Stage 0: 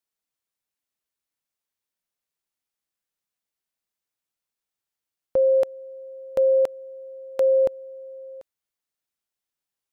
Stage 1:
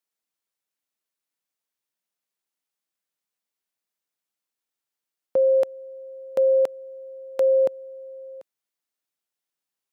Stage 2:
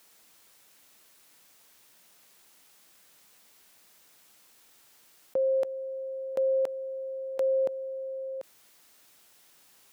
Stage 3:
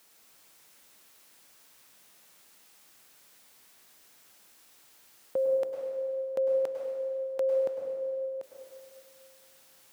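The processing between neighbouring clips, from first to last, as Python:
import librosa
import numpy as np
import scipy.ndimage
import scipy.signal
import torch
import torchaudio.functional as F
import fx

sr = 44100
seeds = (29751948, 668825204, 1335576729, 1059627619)

y1 = scipy.signal.sosfilt(scipy.signal.butter(2, 160.0, 'highpass', fs=sr, output='sos'), x)
y2 = fx.env_flatten(y1, sr, amount_pct=50)
y2 = F.gain(torch.from_numpy(y2), -7.5).numpy()
y3 = fx.rev_plate(y2, sr, seeds[0], rt60_s=2.0, hf_ratio=0.95, predelay_ms=90, drr_db=1.5)
y3 = F.gain(torch.from_numpy(y3), -1.5).numpy()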